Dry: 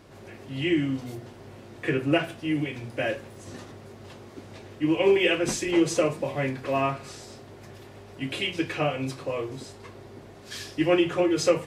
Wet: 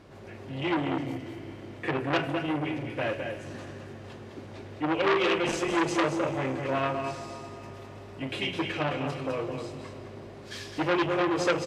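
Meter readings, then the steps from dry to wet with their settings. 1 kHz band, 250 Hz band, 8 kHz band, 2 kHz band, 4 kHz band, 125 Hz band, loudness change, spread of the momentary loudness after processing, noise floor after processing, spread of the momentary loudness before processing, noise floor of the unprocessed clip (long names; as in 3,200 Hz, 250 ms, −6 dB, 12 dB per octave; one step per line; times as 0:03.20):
+3.0 dB, −3.5 dB, −7.0 dB, −0.5 dB, −2.5 dB, −2.0 dB, −3.0 dB, 18 LU, −45 dBFS, 23 LU, −47 dBFS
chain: low-pass filter 4,000 Hz 6 dB per octave
single-tap delay 210 ms −7 dB
four-comb reverb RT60 3.7 s, combs from 27 ms, DRR 11 dB
saturating transformer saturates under 2,100 Hz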